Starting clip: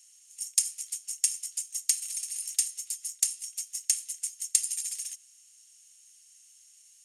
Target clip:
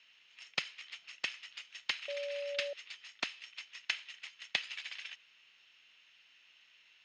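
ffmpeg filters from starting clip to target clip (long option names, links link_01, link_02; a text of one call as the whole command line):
ffmpeg -i in.wav -filter_complex "[0:a]aeval=exprs='0.299*(abs(mod(val(0)/0.299+3,4)-2)-1)':channel_layout=same,asettb=1/sr,asplit=3[link_01][link_02][link_03];[link_01]atrim=end=2.084[link_04];[link_02]atrim=start=2.08:end=2.73,asetpts=PTS-STARTPTS,afade=type=in:duration=0.004:curve=qsin,afade=type=out:start_time=0.646:duration=0.004:curve=qsin,aeval=exprs='val(0)+0.00398*sin(2*PI*690*n/s)':channel_layout=same[link_05];[link_03]atrim=start=2.726[link_06];[link_04][link_05]acrossfade=duration=0.004:curve1=hsin:curve2=qsin[link_07];[link_07][link_06]acrossfade=duration=0.004:curve1=qsin:curve2=hsin,highpass=frequency=260:width_type=q:width=0.5412,highpass=frequency=260:width_type=q:width=1.307,lowpass=frequency=3500:width_type=q:width=0.5176,lowpass=frequency=3500:width_type=q:width=0.7071,lowpass=frequency=3500:width_type=q:width=1.932,afreqshift=-120,volume=11.5dB" out.wav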